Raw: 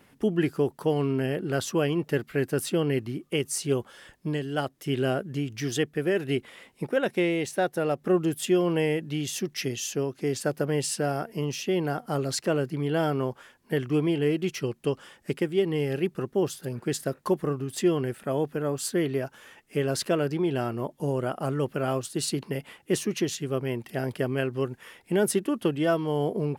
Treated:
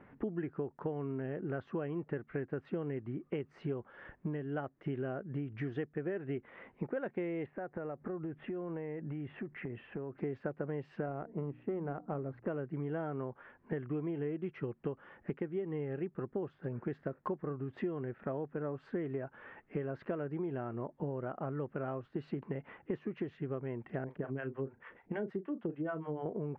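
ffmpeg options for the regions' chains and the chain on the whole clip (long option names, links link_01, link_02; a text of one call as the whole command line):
ffmpeg -i in.wav -filter_complex "[0:a]asettb=1/sr,asplit=3[link_01][link_02][link_03];[link_01]atrim=end=7.464[link_04];[link_02]atrim=start=7.46:end=10.18,asetpts=PTS-STARTPTS,afade=type=in:duration=0.004:curve=qsin,afade=type=out:start_time=2.716:duration=0.004:curve=qsin,lowpass=frequency=2500:width=0.5412,lowpass=frequency=2500:width=1.3066,acompressor=threshold=-37dB:ratio=6:attack=3.2:release=140:knee=1:detection=peak[link_05];[link_03]atrim=start=10.176[link_06];[link_04][link_05]acrossfade=duration=0.004:curve1=hsin:curve2=qsin[link_07];[link_07][link_06]acrossfade=duration=0.004:curve1=qsin:curve2=hsin,asettb=1/sr,asplit=3[link_08][link_09][link_10];[link_08]atrim=end=11.064[link_11];[link_09]atrim=start=11.06:end=12.47,asetpts=PTS-STARTPTS,afade=type=in:duration=0.004:curve=qsin,afade=type=out:start_time=1.406:duration=0.004:curve=qsin,bandreject=frequency=60:width_type=h:width=6,bandreject=frequency=120:width_type=h:width=6,bandreject=frequency=180:width_type=h:width=6,bandreject=frequency=240:width_type=h:width=6,bandreject=frequency=300:width_type=h:width=6,adynamicsmooth=sensitivity=1:basefreq=910[link_12];[link_10]atrim=start=12.466[link_13];[link_11][link_12]acrossfade=duration=0.004:curve1=hsin:curve2=qsin[link_14];[link_14][link_13]acrossfade=duration=0.004:curve1=qsin:curve2=hsin,asettb=1/sr,asplit=3[link_15][link_16][link_17];[link_15]atrim=end=24.044[link_18];[link_16]atrim=start=24.04:end=26.26,asetpts=PTS-STARTPTS,afade=type=in:duration=0.004:curve=qsin,afade=type=out:start_time=2.216:duration=0.004:curve=qsin,acrossover=split=590[link_19][link_20];[link_19]aeval=exprs='val(0)*(1-1/2+1/2*cos(2*PI*6.7*n/s))':channel_layout=same[link_21];[link_20]aeval=exprs='val(0)*(1-1/2-1/2*cos(2*PI*6.7*n/s))':channel_layout=same[link_22];[link_21][link_22]amix=inputs=2:normalize=0,asplit=2[link_23][link_24];[link_24]adelay=37,volume=-12dB[link_25];[link_23][link_25]amix=inputs=2:normalize=0,atrim=end_sample=97902[link_26];[link_17]atrim=start=26.256[link_27];[link_18][link_26]acrossfade=duration=0.004:curve1=hsin:curve2=qsin[link_28];[link_28][link_27]acrossfade=duration=0.004:curve1=qsin:curve2=hsin,lowpass=frequency=1900:width=0.5412,lowpass=frequency=1900:width=1.3066,acompressor=threshold=-36dB:ratio=6,volume=1dB" out.wav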